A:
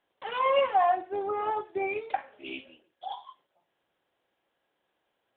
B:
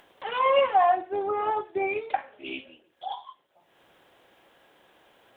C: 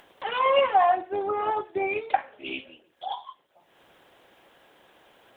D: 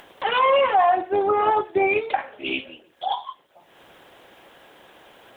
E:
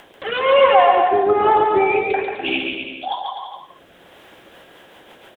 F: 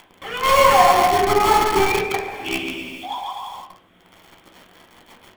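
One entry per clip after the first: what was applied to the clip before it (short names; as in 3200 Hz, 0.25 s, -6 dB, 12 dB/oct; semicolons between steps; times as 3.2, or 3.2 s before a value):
upward compressor, threshold -48 dBFS; gain +3 dB
harmonic-percussive split percussive +4 dB
limiter -18 dBFS, peak gain reduction 8.5 dB; gain +7.5 dB
rotary speaker horn 1.1 Hz, later 7 Hz, at 4.09; bouncing-ball echo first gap 0.14 s, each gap 0.8×, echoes 5; gain +5 dB
in parallel at -6 dB: companded quantiser 2-bit; on the sum: reverb, pre-delay 11 ms, DRR 2.5 dB; gain -9.5 dB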